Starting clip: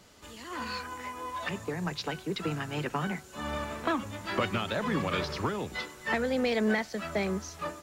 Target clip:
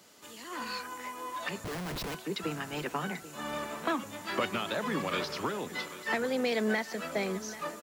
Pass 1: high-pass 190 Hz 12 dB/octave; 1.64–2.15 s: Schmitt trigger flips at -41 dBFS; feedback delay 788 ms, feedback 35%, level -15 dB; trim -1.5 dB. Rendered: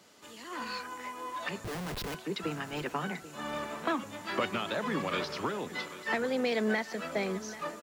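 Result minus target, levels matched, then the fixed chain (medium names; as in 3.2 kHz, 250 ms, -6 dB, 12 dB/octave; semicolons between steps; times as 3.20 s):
8 kHz band -2.5 dB
high-pass 190 Hz 12 dB/octave; treble shelf 8.8 kHz +9 dB; 1.64–2.15 s: Schmitt trigger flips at -41 dBFS; feedback delay 788 ms, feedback 35%, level -15 dB; trim -1.5 dB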